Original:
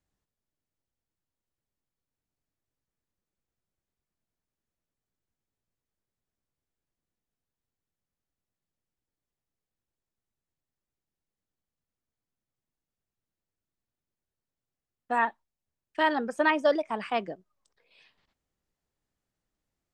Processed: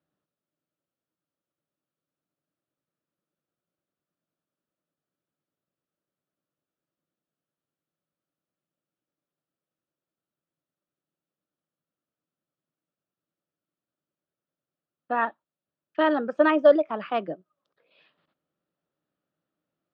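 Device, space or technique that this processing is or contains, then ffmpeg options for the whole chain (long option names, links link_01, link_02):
kitchen radio: -af "highpass=160,equalizer=frequency=160:width_type=q:width=4:gain=8,equalizer=frequency=310:width_type=q:width=4:gain=7,equalizer=frequency=580:width_type=q:width=4:gain=8,equalizer=frequency=900:width_type=q:width=4:gain=-3,equalizer=frequency=1300:width_type=q:width=4:gain=7,equalizer=frequency=2100:width_type=q:width=4:gain=-6,lowpass=frequency=3700:width=0.5412,lowpass=frequency=3700:width=1.3066"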